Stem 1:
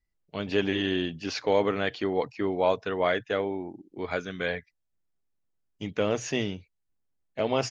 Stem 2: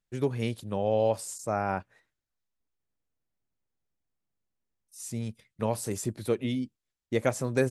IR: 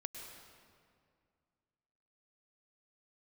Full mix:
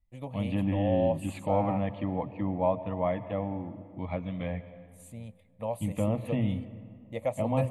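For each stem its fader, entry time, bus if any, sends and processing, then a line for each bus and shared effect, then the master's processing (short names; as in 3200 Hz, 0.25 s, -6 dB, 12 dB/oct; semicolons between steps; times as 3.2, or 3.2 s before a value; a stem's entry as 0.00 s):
-3.0 dB, 0.00 s, send -3.5 dB, treble ducked by the level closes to 1900 Hz, closed at -25 dBFS; tilt shelf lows +8.5 dB, about 720 Hz; notch 730 Hz, Q 21
-8.5 dB, 0.00 s, send -18 dB, bell 510 Hz +13.5 dB 0.98 oct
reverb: on, RT60 2.2 s, pre-delay 96 ms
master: fixed phaser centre 1500 Hz, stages 6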